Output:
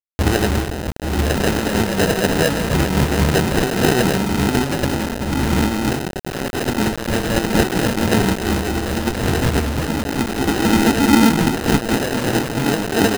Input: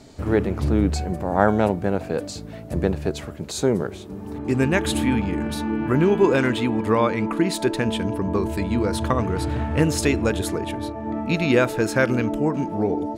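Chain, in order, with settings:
mains-hum notches 60/120/180/240/300/360 Hz
double-tracking delay 15 ms −10.5 dB
brickwall limiter −12 dBFS, peak gain reduction 10 dB
loudspeakers that aren't time-aligned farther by 12 metres −6 dB, 23 metres −3 dB, 98 metres −1 dB
compressor whose output falls as the input rises −23 dBFS, ratio −0.5
0:09.86–0:12.02: loudspeaker in its box 110–2,700 Hz, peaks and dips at 120 Hz −8 dB, 230 Hz +4 dB, 610 Hz −8 dB, 910 Hz +9 dB, 2,400 Hz +6 dB
pitch vibrato 9.5 Hz 82 cents
decimation without filtering 39×
dynamic equaliser 630 Hz, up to −4 dB, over −39 dBFS, Q 2.7
bit reduction 5 bits
level +6 dB

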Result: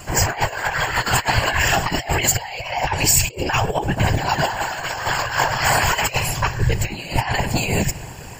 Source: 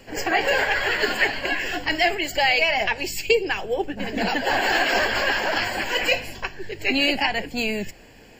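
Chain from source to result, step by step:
high-shelf EQ 10,000 Hz +6 dB
rectangular room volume 3,800 cubic metres, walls mixed, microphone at 0.34 metres
compressor whose output falls as the input rises −26 dBFS, ratio −0.5
random phases in short frames
octave-band graphic EQ 125/250/500/1,000/2,000/4,000/8,000 Hz +9/−8/−5/+8/−4/−4/+8 dB
level +6.5 dB

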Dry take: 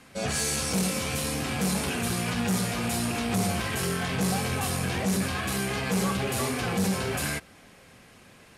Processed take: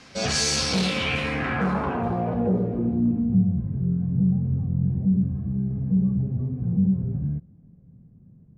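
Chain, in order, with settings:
low-pass filter sweep 5,400 Hz → 160 Hz, 0:00.56–0:03.45
level +3 dB

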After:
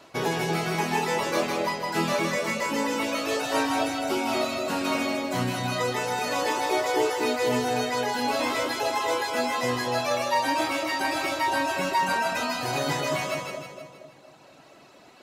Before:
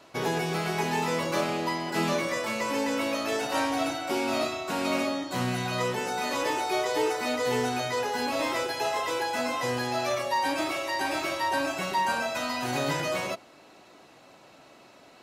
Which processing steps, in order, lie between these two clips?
reverb reduction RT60 1.9 s
on a send: echo with a time of its own for lows and highs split 810 Hz, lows 235 ms, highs 158 ms, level −3 dB
on the sum: level +2.5 dB

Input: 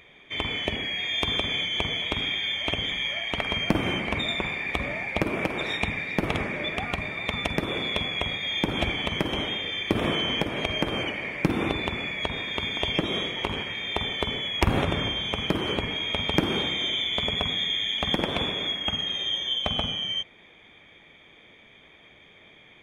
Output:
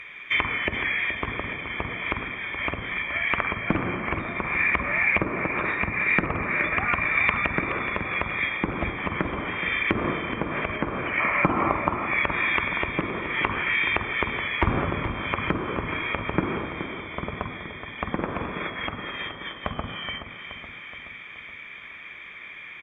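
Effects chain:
gain on a spectral selection 0:11.20–0:12.07, 550–1,400 Hz +9 dB
treble cut that deepens with the level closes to 740 Hz, closed at −24 dBFS
flat-topped bell 1,700 Hz +14.5 dB
repeating echo 424 ms, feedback 56%, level −10 dB
on a send at −18.5 dB: convolution reverb RT60 0.95 s, pre-delay 3 ms
on the sum: level −1 dB

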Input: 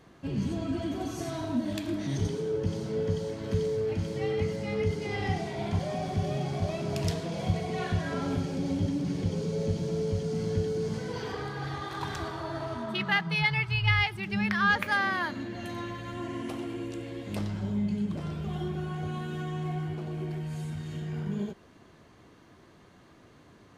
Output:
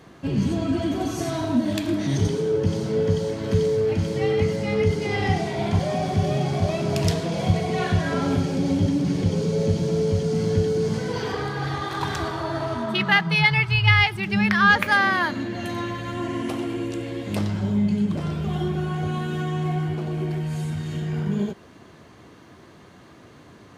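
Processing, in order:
high-pass filter 58 Hz
level +8 dB

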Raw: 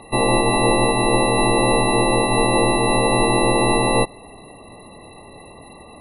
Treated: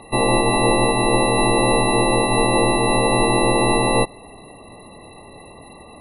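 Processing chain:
0:01.21–0:02.42: parametric band 7,000 Hz +10 dB 0.25 octaves

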